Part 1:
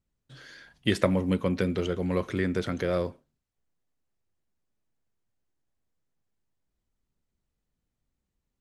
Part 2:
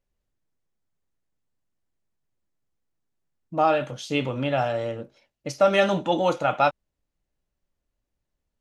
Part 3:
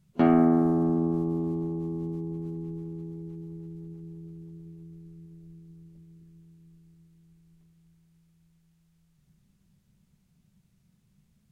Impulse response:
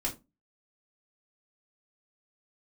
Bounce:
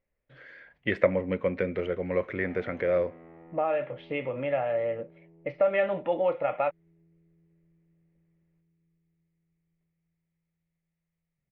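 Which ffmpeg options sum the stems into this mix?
-filter_complex "[0:a]volume=-0.5dB[a];[1:a]lowpass=f=3.6k:w=0.5412,lowpass=f=3.6k:w=1.3066,volume=-7.5dB,asplit=2[b][c];[2:a]asoftclip=type=tanh:threshold=-33.5dB,adelay=2200,volume=-18.5dB[d];[c]apad=whole_len=379652[e];[a][e]sidechaingate=range=-7dB:threshold=-56dB:ratio=16:detection=peak[f];[b][d]amix=inputs=2:normalize=0,bandreject=f=1.5k:w=8.8,acompressor=threshold=-36dB:ratio=2,volume=0dB[g];[f][g]amix=inputs=2:normalize=0,lowpass=f=2.1k:t=q:w=4,equalizer=f=540:w=1.9:g=11.5"

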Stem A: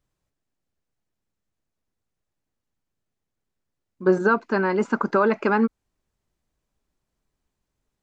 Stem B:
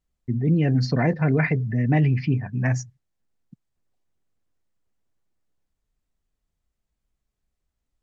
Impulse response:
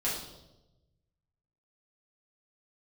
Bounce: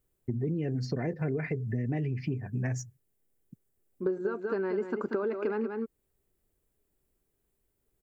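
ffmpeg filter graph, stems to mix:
-filter_complex "[0:a]volume=-4dB,asplit=2[a][b];[b]volume=-9dB[c];[1:a]aexciter=amount=3.4:drive=8.5:freq=5.8k,volume=-4.5dB[d];[c]aecho=0:1:186:1[e];[a][d][e]amix=inputs=3:normalize=0,equalizer=f=100:t=o:w=0.67:g=3,equalizer=f=400:t=o:w=0.67:g=10,equalizer=f=1k:t=o:w=0.67:g=-4,equalizer=f=6.3k:t=o:w=0.67:g=-8,acompressor=threshold=-28dB:ratio=8"

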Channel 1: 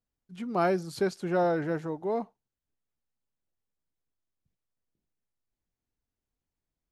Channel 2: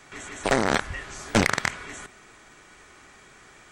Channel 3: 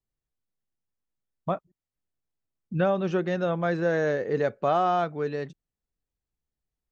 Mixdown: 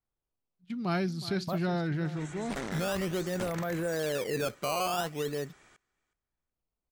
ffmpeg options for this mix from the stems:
-filter_complex "[0:a]agate=range=-22dB:threshold=-42dB:ratio=16:detection=peak,equalizer=f=125:t=o:w=1:g=9,equalizer=f=500:t=o:w=1:g=-11,equalizer=f=1k:t=o:w=1:g=-6,equalizer=f=4k:t=o:w=1:g=8,equalizer=f=8k:t=o:w=1:g=-6,adelay=300,volume=0dB,asplit=2[a][b];[b]volume=-15dB[c];[1:a]asoftclip=type=tanh:threshold=-21.5dB,adelay=2050,volume=-9dB,asplit=2[d][e];[e]volume=-23dB[f];[2:a]acrusher=samples=14:mix=1:aa=0.000001:lfo=1:lforange=22.4:lforate=0.48,volume=-2.5dB[g];[d][g]amix=inputs=2:normalize=0,alimiter=level_in=0.5dB:limit=-24dB:level=0:latency=1:release=11,volume=-0.5dB,volume=0dB[h];[c][f]amix=inputs=2:normalize=0,aecho=0:1:368|736|1104:1|0.17|0.0289[i];[a][h][i]amix=inputs=3:normalize=0"

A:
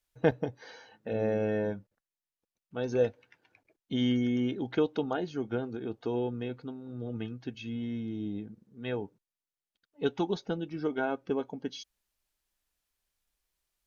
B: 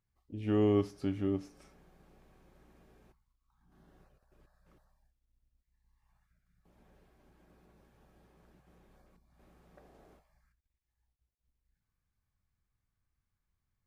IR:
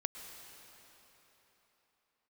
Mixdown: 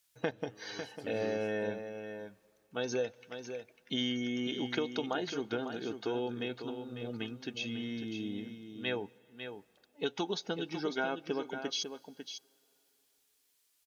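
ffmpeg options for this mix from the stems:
-filter_complex "[0:a]acompressor=threshold=-29dB:ratio=6,volume=-1dB,asplit=3[a][b][c];[b]volume=-19.5dB[d];[c]volume=-8dB[e];[1:a]tremolo=f=0.84:d=0.92,volume=-9.5dB[f];[2:a]atrim=start_sample=2205[g];[d][g]afir=irnorm=-1:irlink=0[h];[e]aecho=0:1:549:1[i];[a][f][h][i]amix=inputs=4:normalize=0,highpass=f=240:p=1,highshelf=f=2.1k:g=11.5"

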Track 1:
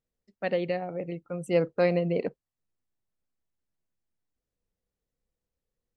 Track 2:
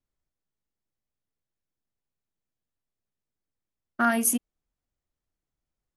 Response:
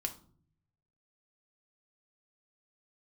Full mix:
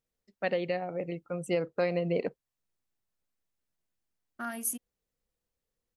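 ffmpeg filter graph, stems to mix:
-filter_complex "[0:a]lowshelf=f=470:g=-4.5,volume=2dB[a];[1:a]highshelf=f=6.4k:g=9,adelay=400,volume=-14.5dB[b];[a][b]amix=inputs=2:normalize=0,alimiter=limit=-18.5dB:level=0:latency=1:release=312"

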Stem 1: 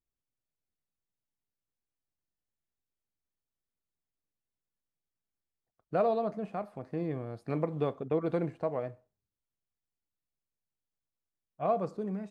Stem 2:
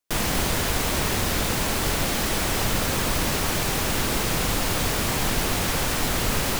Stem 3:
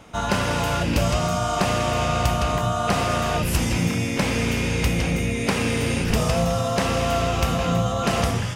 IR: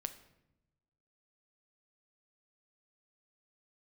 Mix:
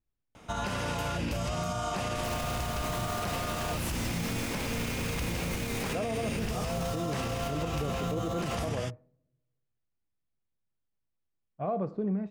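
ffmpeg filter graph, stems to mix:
-filter_complex "[0:a]lowpass=3.3k,lowshelf=f=350:g=8,volume=-0.5dB,asplit=3[a][b][c];[b]volume=-18dB[d];[1:a]afwtdn=0.0112,adelay=2050,volume=-8.5dB[e];[2:a]adelay=350,volume=-5.5dB[f];[c]apad=whole_len=381212[g];[e][g]sidechaincompress=threshold=-33dB:ratio=8:attack=16:release=878[h];[3:a]atrim=start_sample=2205[i];[d][i]afir=irnorm=-1:irlink=0[j];[a][h][f][j]amix=inputs=4:normalize=0,alimiter=limit=-23.5dB:level=0:latency=1:release=64"

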